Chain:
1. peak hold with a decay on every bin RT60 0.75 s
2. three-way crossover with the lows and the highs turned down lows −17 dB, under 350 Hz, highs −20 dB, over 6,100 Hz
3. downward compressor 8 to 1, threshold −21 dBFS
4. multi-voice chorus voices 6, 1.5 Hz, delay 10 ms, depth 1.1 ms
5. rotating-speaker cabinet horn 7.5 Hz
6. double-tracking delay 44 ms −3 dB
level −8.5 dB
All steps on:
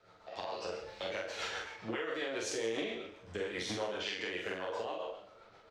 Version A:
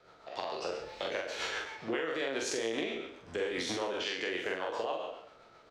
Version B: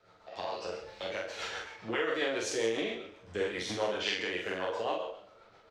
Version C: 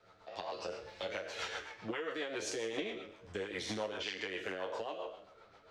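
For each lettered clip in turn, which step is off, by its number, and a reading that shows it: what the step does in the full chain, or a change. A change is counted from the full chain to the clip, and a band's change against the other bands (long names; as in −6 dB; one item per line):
4, 125 Hz band −4.5 dB
3, average gain reduction 2.5 dB
6, change in integrated loudness −2.0 LU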